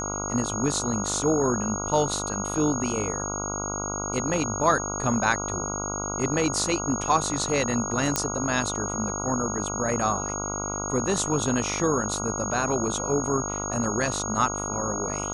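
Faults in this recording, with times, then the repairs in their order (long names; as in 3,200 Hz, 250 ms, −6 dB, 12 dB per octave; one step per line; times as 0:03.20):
mains buzz 50 Hz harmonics 29 −33 dBFS
whistle 6,600 Hz −31 dBFS
0:08.16: click −6 dBFS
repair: click removal
hum removal 50 Hz, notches 29
notch filter 6,600 Hz, Q 30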